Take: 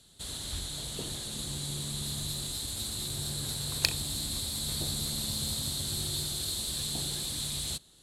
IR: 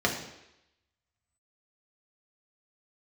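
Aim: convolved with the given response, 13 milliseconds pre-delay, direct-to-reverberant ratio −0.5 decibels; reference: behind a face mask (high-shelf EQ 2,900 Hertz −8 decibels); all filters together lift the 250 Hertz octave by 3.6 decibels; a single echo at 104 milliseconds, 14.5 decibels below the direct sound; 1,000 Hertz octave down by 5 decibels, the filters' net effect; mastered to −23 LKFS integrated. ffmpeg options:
-filter_complex "[0:a]equalizer=frequency=250:width_type=o:gain=5.5,equalizer=frequency=1000:width_type=o:gain=-6,aecho=1:1:104:0.188,asplit=2[link_01][link_02];[1:a]atrim=start_sample=2205,adelay=13[link_03];[link_02][link_03]afir=irnorm=-1:irlink=0,volume=-11.5dB[link_04];[link_01][link_04]amix=inputs=2:normalize=0,highshelf=frequency=2900:gain=-8,volume=10dB"

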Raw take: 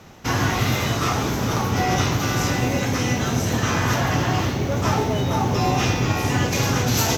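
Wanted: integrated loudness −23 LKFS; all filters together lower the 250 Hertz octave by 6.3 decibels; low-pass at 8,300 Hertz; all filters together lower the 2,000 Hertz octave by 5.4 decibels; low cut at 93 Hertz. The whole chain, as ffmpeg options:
ffmpeg -i in.wav -af "highpass=93,lowpass=8300,equalizer=frequency=250:width_type=o:gain=-8.5,equalizer=frequency=2000:width_type=o:gain=-7,volume=1.5dB" out.wav

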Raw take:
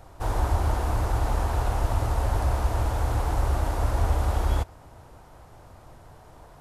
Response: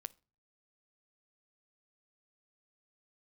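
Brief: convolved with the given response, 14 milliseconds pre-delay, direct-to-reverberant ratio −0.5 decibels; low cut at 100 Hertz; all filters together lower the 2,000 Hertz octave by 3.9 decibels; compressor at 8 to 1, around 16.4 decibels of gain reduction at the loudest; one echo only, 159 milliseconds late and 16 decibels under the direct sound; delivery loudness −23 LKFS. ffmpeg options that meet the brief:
-filter_complex "[0:a]highpass=100,equalizer=frequency=2000:width_type=o:gain=-5.5,acompressor=threshold=-43dB:ratio=8,aecho=1:1:159:0.158,asplit=2[link_01][link_02];[1:a]atrim=start_sample=2205,adelay=14[link_03];[link_02][link_03]afir=irnorm=-1:irlink=0,volume=5dB[link_04];[link_01][link_04]amix=inputs=2:normalize=0,volume=21dB"

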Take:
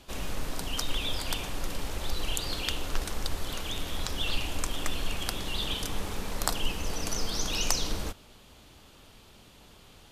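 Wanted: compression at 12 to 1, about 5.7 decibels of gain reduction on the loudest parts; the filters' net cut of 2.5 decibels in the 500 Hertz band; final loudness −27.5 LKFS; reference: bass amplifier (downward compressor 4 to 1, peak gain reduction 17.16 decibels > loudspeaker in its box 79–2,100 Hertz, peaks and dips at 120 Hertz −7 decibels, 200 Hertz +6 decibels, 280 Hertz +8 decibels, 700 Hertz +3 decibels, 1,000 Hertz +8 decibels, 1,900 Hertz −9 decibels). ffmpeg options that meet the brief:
ffmpeg -i in.wav -af "equalizer=frequency=500:width_type=o:gain=-5.5,acompressor=threshold=-27dB:ratio=12,acompressor=threshold=-47dB:ratio=4,highpass=frequency=79:width=0.5412,highpass=frequency=79:width=1.3066,equalizer=frequency=120:width_type=q:width=4:gain=-7,equalizer=frequency=200:width_type=q:width=4:gain=6,equalizer=frequency=280:width_type=q:width=4:gain=8,equalizer=frequency=700:width_type=q:width=4:gain=3,equalizer=frequency=1000:width_type=q:width=4:gain=8,equalizer=frequency=1900:width_type=q:width=4:gain=-9,lowpass=frequency=2100:width=0.5412,lowpass=frequency=2100:width=1.3066,volume=27dB" out.wav

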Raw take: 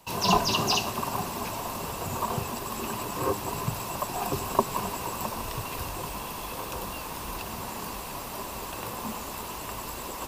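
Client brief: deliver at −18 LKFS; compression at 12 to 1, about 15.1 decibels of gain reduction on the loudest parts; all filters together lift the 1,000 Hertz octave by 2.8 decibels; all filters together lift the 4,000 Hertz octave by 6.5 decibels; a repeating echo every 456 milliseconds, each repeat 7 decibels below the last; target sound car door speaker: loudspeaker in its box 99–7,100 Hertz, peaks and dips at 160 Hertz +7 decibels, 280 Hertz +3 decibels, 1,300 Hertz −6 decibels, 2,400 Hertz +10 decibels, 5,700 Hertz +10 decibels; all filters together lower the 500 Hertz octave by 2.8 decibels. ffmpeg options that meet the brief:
ffmpeg -i in.wav -af "equalizer=frequency=500:width_type=o:gain=-6,equalizer=frequency=1000:width_type=o:gain=5.5,equalizer=frequency=4000:width_type=o:gain=3.5,acompressor=threshold=-29dB:ratio=12,highpass=99,equalizer=frequency=160:width_type=q:width=4:gain=7,equalizer=frequency=280:width_type=q:width=4:gain=3,equalizer=frequency=1300:width_type=q:width=4:gain=-6,equalizer=frequency=2400:width_type=q:width=4:gain=10,equalizer=frequency=5700:width_type=q:width=4:gain=10,lowpass=frequency=7100:width=0.5412,lowpass=frequency=7100:width=1.3066,aecho=1:1:456|912|1368|1824|2280:0.447|0.201|0.0905|0.0407|0.0183,volume=13.5dB" out.wav

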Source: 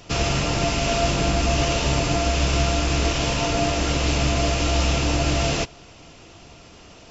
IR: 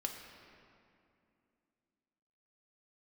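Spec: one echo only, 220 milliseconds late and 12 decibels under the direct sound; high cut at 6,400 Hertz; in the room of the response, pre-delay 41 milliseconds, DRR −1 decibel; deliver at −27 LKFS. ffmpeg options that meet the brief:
-filter_complex "[0:a]lowpass=6400,aecho=1:1:220:0.251,asplit=2[link_01][link_02];[1:a]atrim=start_sample=2205,adelay=41[link_03];[link_02][link_03]afir=irnorm=-1:irlink=0,volume=1dB[link_04];[link_01][link_04]amix=inputs=2:normalize=0,volume=-9dB"

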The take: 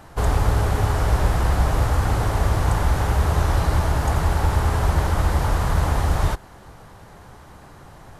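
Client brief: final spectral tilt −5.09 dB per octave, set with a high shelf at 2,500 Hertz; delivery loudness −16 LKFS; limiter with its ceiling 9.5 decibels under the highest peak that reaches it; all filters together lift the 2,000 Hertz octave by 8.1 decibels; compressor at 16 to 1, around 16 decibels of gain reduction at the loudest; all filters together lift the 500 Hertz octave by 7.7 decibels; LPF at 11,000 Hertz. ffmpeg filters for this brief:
ffmpeg -i in.wav -af "lowpass=11000,equalizer=frequency=500:width_type=o:gain=9,equalizer=frequency=2000:width_type=o:gain=7.5,highshelf=frequency=2500:gain=5.5,acompressor=threshold=-29dB:ratio=16,volume=20.5dB,alimiter=limit=-5.5dB:level=0:latency=1" out.wav

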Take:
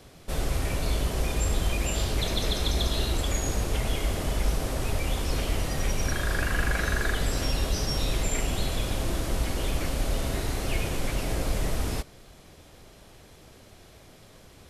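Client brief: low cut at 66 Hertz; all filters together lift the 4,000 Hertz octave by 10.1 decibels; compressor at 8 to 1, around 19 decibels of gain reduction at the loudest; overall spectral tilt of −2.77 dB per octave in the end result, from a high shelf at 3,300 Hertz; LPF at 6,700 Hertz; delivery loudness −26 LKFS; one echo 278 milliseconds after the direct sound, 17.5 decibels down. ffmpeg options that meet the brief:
ffmpeg -i in.wav -af "highpass=66,lowpass=6700,highshelf=frequency=3300:gain=5.5,equalizer=frequency=4000:width_type=o:gain=9,acompressor=threshold=-38dB:ratio=8,aecho=1:1:278:0.133,volume=14dB" out.wav

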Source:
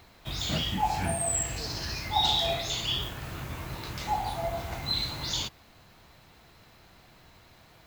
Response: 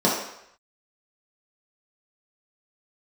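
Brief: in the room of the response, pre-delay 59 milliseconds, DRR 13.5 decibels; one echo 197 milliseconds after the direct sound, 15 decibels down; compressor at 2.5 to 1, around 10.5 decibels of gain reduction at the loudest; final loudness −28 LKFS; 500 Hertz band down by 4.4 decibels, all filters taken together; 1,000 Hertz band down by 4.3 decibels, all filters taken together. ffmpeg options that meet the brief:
-filter_complex "[0:a]equalizer=frequency=500:width_type=o:gain=-5,equalizer=frequency=1000:width_type=o:gain=-3.5,acompressor=threshold=-39dB:ratio=2.5,aecho=1:1:197:0.178,asplit=2[link_01][link_02];[1:a]atrim=start_sample=2205,adelay=59[link_03];[link_02][link_03]afir=irnorm=-1:irlink=0,volume=-31.5dB[link_04];[link_01][link_04]amix=inputs=2:normalize=0,volume=10dB"

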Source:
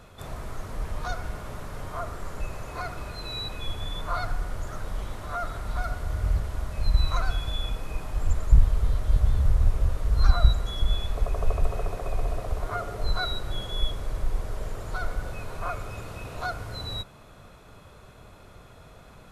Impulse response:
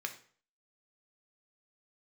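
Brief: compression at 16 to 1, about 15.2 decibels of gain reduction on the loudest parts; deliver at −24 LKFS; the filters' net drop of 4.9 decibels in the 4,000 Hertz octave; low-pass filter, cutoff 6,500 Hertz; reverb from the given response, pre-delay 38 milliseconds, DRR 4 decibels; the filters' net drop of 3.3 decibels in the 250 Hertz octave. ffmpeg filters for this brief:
-filter_complex "[0:a]lowpass=6500,equalizer=frequency=250:width_type=o:gain=-5.5,equalizer=frequency=4000:width_type=o:gain=-5,acompressor=threshold=-24dB:ratio=16,asplit=2[link_01][link_02];[1:a]atrim=start_sample=2205,adelay=38[link_03];[link_02][link_03]afir=irnorm=-1:irlink=0,volume=-5dB[link_04];[link_01][link_04]amix=inputs=2:normalize=0,volume=11.5dB"

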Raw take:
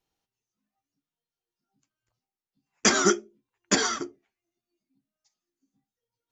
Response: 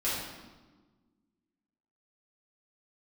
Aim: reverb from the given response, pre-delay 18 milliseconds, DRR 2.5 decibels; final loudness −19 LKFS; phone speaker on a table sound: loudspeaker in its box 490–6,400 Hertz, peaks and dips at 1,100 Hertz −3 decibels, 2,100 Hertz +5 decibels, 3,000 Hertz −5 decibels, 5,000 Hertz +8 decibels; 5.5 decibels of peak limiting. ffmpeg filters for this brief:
-filter_complex "[0:a]alimiter=limit=-12dB:level=0:latency=1,asplit=2[link_01][link_02];[1:a]atrim=start_sample=2205,adelay=18[link_03];[link_02][link_03]afir=irnorm=-1:irlink=0,volume=-10.5dB[link_04];[link_01][link_04]amix=inputs=2:normalize=0,highpass=frequency=490:width=0.5412,highpass=frequency=490:width=1.3066,equalizer=frequency=1100:width_type=q:width=4:gain=-3,equalizer=frequency=2100:width_type=q:width=4:gain=5,equalizer=frequency=3000:width_type=q:width=4:gain=-5,equalizer=frequency=5000:width_type=q:width=4:gain=8,lowpass=frequency=6400:width=0.5412,lowpass=frequency=6400:width=1.3066,volume=6dB"

